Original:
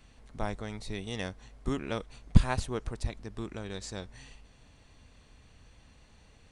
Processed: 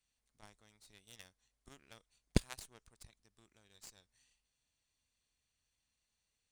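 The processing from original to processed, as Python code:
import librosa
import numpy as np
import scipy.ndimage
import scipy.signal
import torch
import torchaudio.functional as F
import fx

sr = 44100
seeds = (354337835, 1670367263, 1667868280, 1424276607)

y = librosa.effects.preemphasis(x, coef=0.9, zi=[0.0])
y = fx.cheby_harmonics(y, sr, harmonics=(3, 4), levels_db=(-10, -28), full_scale_db=-22.5)
y = y * 10.0 ** (11.5 / 20.0)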